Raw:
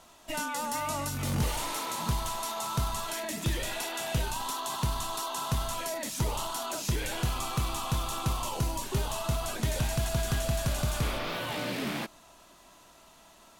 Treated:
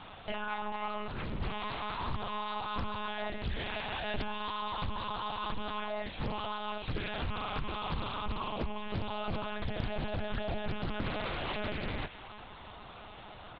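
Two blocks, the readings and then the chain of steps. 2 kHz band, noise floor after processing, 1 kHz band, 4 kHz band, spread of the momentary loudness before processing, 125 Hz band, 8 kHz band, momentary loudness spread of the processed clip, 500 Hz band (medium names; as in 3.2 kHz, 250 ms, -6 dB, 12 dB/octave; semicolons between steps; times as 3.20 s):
-2.0 dB, -49 dBFS, -2.5 dB, -4.5 dB, 3 LU, -8.5 dB, under -40 dB, 4 LU, -3.0 dB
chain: in parallel at -1 dB: peak limiter -31.5 dBFS, peak gain reduction 11.5 dB; on the sum: compression 6:1, threshold -36 dBFS, peak gain reduction 13 dB; short-mantissa float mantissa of 4-bit; doubling 17 ms -6 dB; on a send: feedback echo behind a high-pass 107 ms, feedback 74%, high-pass 1.9 kHz, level -12.5 dB; on the sum: monotone LPC vocoder at 8 kHz 210 Hz; loudspeaker Doppler distortion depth 0.81 ms; trim +2 dB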